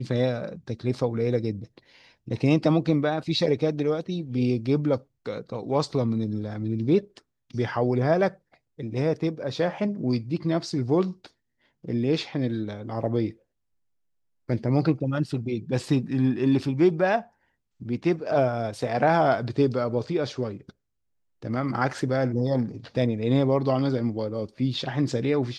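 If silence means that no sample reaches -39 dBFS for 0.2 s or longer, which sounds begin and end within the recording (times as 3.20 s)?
2.28–4.99 s
5.26–7.18 s
7.50–8.34 s
8.79–11.26 s
11.84–13.32 s
14.49–17.23 s
17.81–20.70 s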